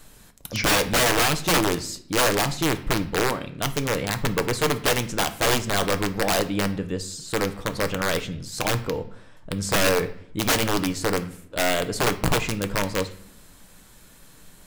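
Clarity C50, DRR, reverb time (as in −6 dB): 15.0 dB, 8.5 dB, 0.60 s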